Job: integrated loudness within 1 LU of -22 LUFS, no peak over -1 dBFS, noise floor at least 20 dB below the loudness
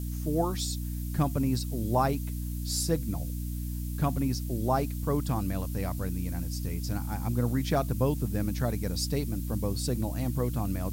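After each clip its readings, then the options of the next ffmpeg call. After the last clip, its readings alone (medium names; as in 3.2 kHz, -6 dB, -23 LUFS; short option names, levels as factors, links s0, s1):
hum 60 Hz; highest harmonic 300 Hz; hum level -31 dBFS; noise floor -34 dBFS; noise floor target -51 dBFS; loudness -30.5 LUFS; peak level -12.0 dBFS; loudness target -22.0 LUFS
-> -af "bandreject=f=60:t=h:w=4,bandreject=f=120:t=h:w=4,bandreject=f=180:t=h:w=4,bandreject=f=240:t=h:w=4,bandreject=f=300:t=h:w=4"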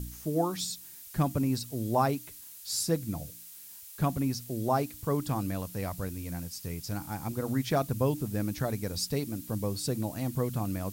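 hum not found; noise floor -48 dBFS; noise floor target -52 dBFS
-> -af "afftdn=nr=6:nf=-48"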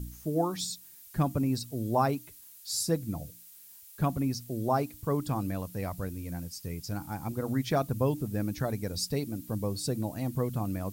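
noise floor -52 dBFS; loudness -32.0 LUFS; peak level -14.0 dBFS; loudness target -22.0 LUFS
-> -af "volume=3.16"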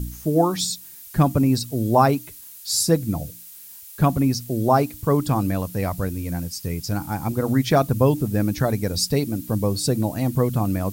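loudness -22.0 LUFS; peak level -4.0 dBFS; noise floor -42 dBFS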